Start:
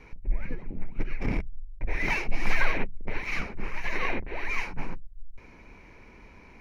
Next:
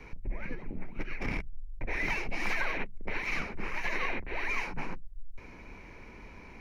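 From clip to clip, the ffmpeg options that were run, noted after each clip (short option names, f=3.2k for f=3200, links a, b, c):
-filter_complex "[0:a]acrossover=split=170|960[a][b][c];[a]acompressor=threshold=-34dB:ratio=4[d];[b]acompressor=threshold=-42dB:ratio=4[e];[c]acompressor=threshold=-34dB:ratio=4[f];[d][e][f]amix=inputs=3:normalize=0,volume=2dB"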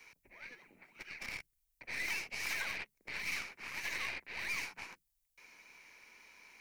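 -af "aderivative,aeval=exprs='0.0299*(cos(1*acos(clip(val(0)/0.0299,-1,1)))-cos(1*PI/2))+0.00237*(cos(8*acos(clip(val(0)/0.0299,-1,1)))-cos(8*PI/2))':c=same,volume=5.5dB"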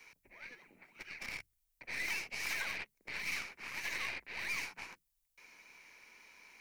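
-af "bandreject=f=50:t=h:w=6,bandreject=f=100:t=h:w=6"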